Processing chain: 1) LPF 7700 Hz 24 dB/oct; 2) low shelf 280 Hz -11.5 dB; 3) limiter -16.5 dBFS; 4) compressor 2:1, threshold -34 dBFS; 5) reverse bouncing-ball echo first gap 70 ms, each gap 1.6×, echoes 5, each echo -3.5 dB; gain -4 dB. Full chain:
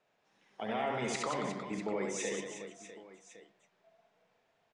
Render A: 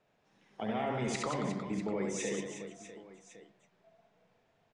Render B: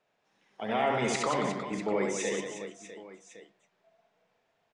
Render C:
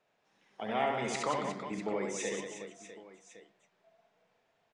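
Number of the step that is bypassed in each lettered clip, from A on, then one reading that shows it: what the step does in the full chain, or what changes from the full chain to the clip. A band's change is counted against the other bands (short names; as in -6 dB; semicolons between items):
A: 2, 125 Hz band +6.5 dB; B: 4, mean gain reduction 4.0 dB; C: 3, crest factor change +1.5 dB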